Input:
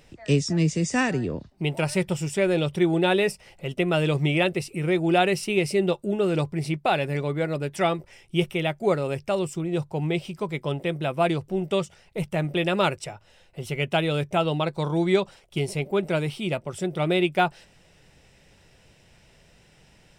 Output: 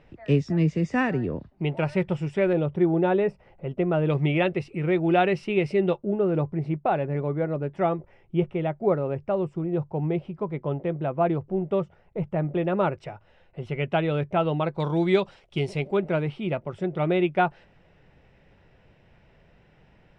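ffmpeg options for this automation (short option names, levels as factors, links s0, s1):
-af "asetnsamples=n=441:p=0,asendcmd='2.53 lowpass f 1200;4.1 lowpass f 2300;5.98 lowpass f 1200;12.93 lowpass f 2000;14.8 lowpass f 4000;15.97 lowpass f 2000',lowpass=2100"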